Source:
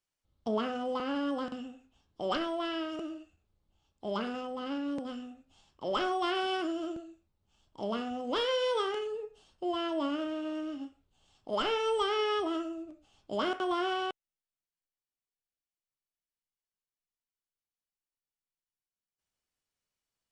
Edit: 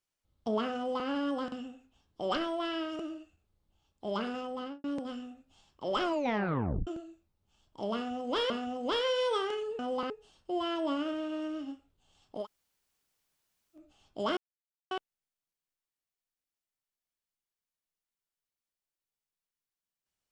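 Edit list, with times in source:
0.76–1.07 s: copy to 9.23 s
4.59–4.84 s: studio fade out
6.02 s: tape stop 0.85 s
7.94–8.50 s: loop, 2 plays
11.55–12.91 s: room tone, crossfade 0.10 s
13.50–14.04 s: mute

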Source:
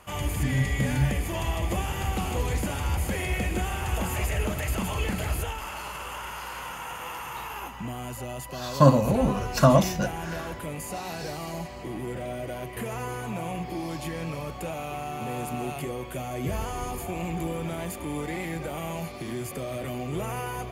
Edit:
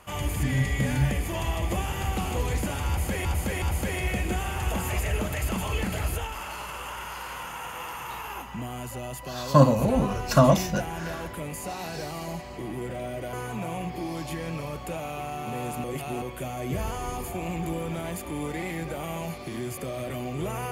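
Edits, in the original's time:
2.88–3.25 s: loop, 3 plays
12.59–13.07 s: delete
15.58–15.96 s: reverse

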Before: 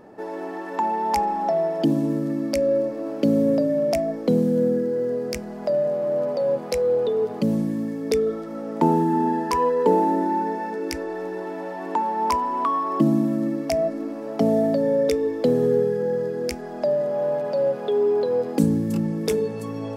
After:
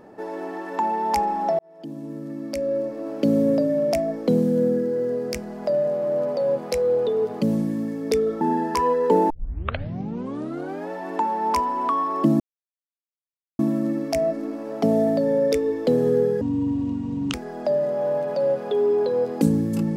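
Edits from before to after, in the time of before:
1.59–3.34 s: fade in
8.41–9.17 s: delete
10.06 s: tape start 1.61 s
13.16 s: insert silence 1.19 s
15.98–16.51 s: speed 57%

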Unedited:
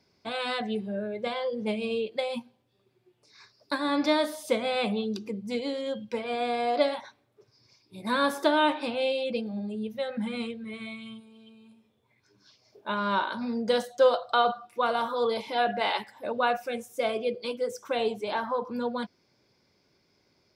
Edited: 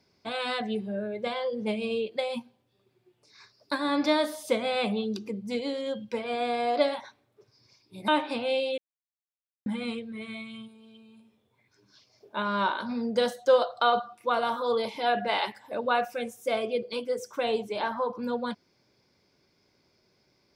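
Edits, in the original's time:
8.08–8.60 s: delete
9.30–10.18 s: mute

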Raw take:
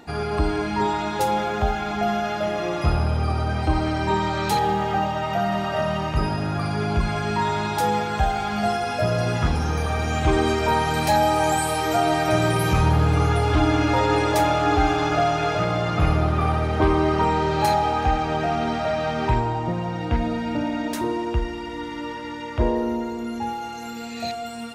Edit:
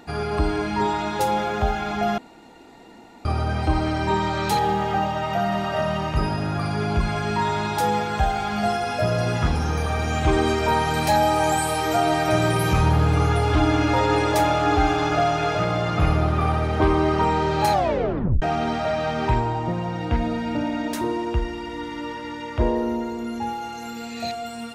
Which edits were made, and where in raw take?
2.18–3.25 s: room tone
17.72 s: tape stop 0.70 s

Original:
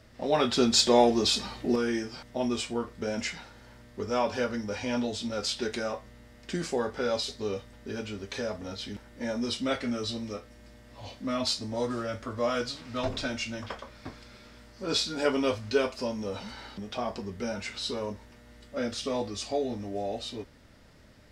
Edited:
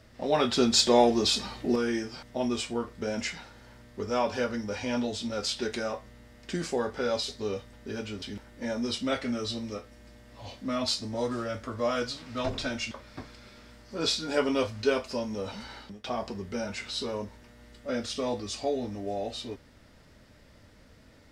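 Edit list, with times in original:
8.22–8.81 s: delete
13.50–13.79 s: delete
16.56–16.92 s: fade out equal-power, to -18 dB

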